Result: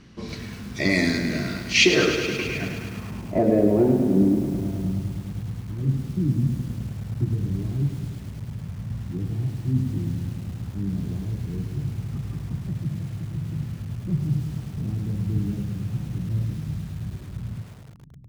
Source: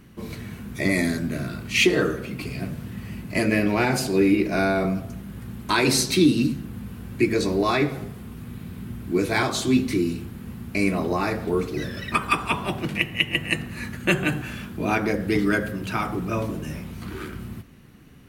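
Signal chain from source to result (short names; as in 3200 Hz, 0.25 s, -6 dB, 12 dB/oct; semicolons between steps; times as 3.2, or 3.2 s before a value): low-pass sweep 5300 Hz -> 130 Hz, 2–4.55; lo-fi delay 0.105 s, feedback 80%, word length 7-bit, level -9 dB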